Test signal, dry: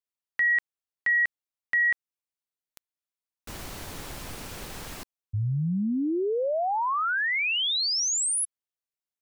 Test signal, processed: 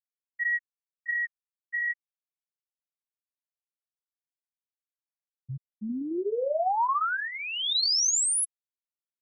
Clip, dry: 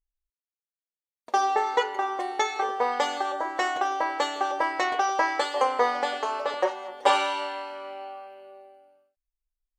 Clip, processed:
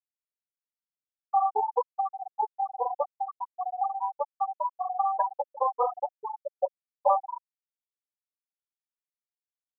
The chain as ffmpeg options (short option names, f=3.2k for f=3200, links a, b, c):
-filter_complex "[0:a]acrossover=split=320|1400|3400[a][b][c][d];[c]acompressor=threshold=-39dB:ratio=10:attack=0.64:release=381:knee=1:detection=peak[e];[a][b][e][d]amix=inputs=4:normalize=0,lowshelf=f=350:g=-11.5,flanger=delay=5.2:depth=9.6:regen=-37:speed=0.98:shape=sinusoidal,asoftclip=type=hard:threshold=-20dB,afftfilt=real='re*gte(hypot(re,im),0.158)':imag='im*gte(hypot(re,im),0.158)':win_size=1024:overlap=0.75,volume=7dB"